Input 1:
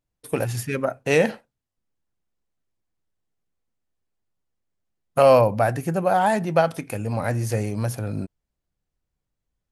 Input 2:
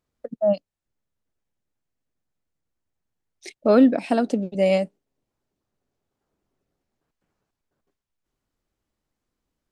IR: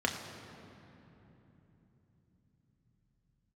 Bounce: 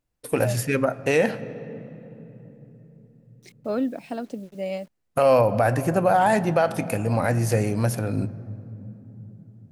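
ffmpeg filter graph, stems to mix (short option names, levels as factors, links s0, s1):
-filter_complex "[0:a]volume=1.26,asplit=2[s0][s1];[s1]volume=0.112[s2];[1:a]acrusher=bits=7:mix=0:aa=0.000001,volume=0.299[s3];[2:a]atrim=start_sample=2205[s4];[s2][s4]afir=irnorm=-1:irlink=0[s5];[s0][s3][s5]amix=inputs=3:normalize=0,alimiter=limit=0.335:level=0:latency=1:release=76"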